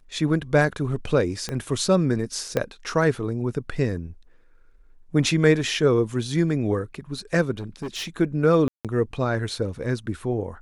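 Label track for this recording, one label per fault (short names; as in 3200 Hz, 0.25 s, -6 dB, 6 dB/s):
1.490000	1.490000	pop -15 dBFS
2.570000	2.570000	pop -10 dBFS
7.510000	8.080000	clipped -27 dBFS
8.680000	8.850000	gap 0.167 s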